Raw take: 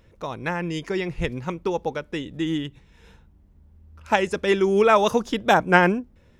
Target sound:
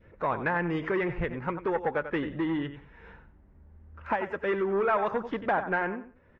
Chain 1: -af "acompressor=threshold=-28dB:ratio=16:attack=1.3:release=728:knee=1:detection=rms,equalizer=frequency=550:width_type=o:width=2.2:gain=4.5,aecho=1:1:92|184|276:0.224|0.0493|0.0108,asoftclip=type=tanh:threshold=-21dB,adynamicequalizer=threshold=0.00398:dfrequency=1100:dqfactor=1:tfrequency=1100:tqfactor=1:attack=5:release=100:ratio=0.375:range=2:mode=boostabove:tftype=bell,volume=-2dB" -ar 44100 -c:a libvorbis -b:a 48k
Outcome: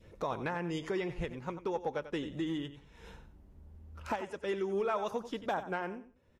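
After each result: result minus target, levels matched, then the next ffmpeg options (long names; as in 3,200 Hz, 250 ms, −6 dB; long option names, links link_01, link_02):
downward compressor: peak gain reduction +7.5 dB; 2,000 Hz band −3.5 dB
-af "acompressor=threshold=-20dB:ratio=16:attack=1.3:release=728:knee=1:detection=rms,equalizer=frequency=550:width_type=o:width=2.2:gain=4.5,aecho=1:1:92|184|276:0.224|0.0493|0.0108,asoftclip=type=tanh:threshold=-21dB,adynamicequalizer=threshold=0.00398:dfrequency=1100:dqfactor=1:tfrequency=1100:tqfactor=1:attack=5:release=100:ratio=0.375:range=2:mode=boostabove:tftype=bell,volume=-2dB" -ar 44100 -c:a libvorbis -b:a 48k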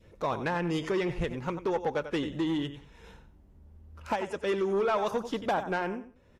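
2,000 Hz band −4.0 dB
-af "acompressor=threshold=-20dB:ratio=16:attack=1.3:release=728:knee=1:detection=rms,equalizer=frequency=550:width_type=o:width=2.2:gain=4.5,aecho=1:1:92|184|276:0.224|0.0493|0.0108,asoftclip=type=tanh:threshold=-21dB,adynamicequalizer=threshold=0.00398:dfrequency=1100:dqfactor=1:tfrequency=1100:tqfactor=1:attack=5:release=100:ratio=0.375:range=2:mode=boostabove:tftype=bell,lowpass=frequency=1800:width_type=q:width=2,volume=-2dB" -ar 44100 -c:a libvorbis -b:a 48k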